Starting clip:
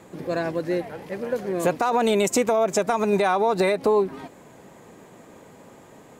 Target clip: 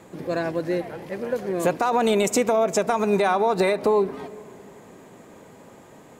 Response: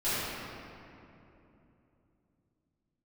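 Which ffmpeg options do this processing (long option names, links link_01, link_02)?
-filter_complex "[0:a]asplit=2[link_01][link_02];[1:a]atrim=start_sample=2205,lowpass=4500[link_03];[link_02][link_03]afir=irnorm=-1:irlink=0,volume=-28.5dB[link_04];[link_01][link_04]amix=inputs=2:normalize=0"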